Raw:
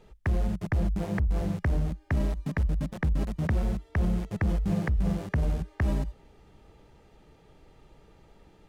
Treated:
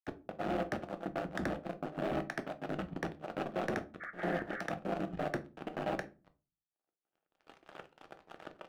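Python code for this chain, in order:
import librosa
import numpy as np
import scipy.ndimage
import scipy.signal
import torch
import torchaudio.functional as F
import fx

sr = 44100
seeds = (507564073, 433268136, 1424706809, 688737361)

y = fx.block_reorder(x, sr, ms=96.0, group=3)
y = fx.recorder_agc(y, sr, target_db=-24.5, rise_db_per_s=14.0, max_gain_db=30)
y = fx.power_curve(y, sr, exponent=3.0)
y = fx.cabinet(y, sr, low_hz=420.0, low_slope=12, high_hz=2900.0, hz=(460.0, 710.0, 1000.0, 1400.0, 2100.0), db=(-7, 3, -10, 3, -7))
y = fx.leveller(y, sr, passes=3)
y = fx.spec_repair(y, sr, seeds[0], start_s=4.03, length_s=0.55, low_hz=1100.0, high_hz=2300.0, source='after')
y = fx.volume_shaper(y, sr, bpm=95, per_beat=2, depth_db=-22, release_ms=78.0, shape='slow start')
y = fx.room_shoebox(y, sr, seeds[1], volume_m3=150.0, walls='furnished', distance_m=0.61)
y = F.gain(torch.from_numpy(y), -2.5).numpy()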